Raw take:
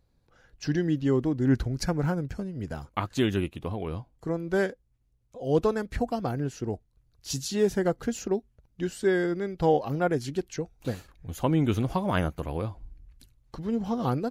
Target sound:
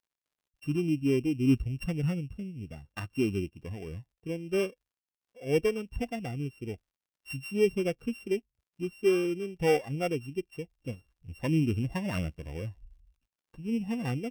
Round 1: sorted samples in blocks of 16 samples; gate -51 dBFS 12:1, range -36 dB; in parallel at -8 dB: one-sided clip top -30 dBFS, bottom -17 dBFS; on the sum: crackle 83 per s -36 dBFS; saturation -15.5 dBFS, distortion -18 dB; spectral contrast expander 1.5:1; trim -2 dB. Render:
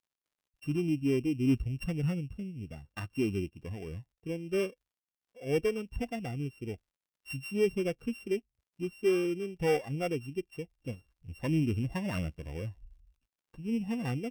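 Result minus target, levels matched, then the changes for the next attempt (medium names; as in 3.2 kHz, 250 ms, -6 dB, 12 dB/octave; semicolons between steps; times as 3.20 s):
saturation: distortion +10 dB
change: saturation -9.5 dBFS, distortion -28 dB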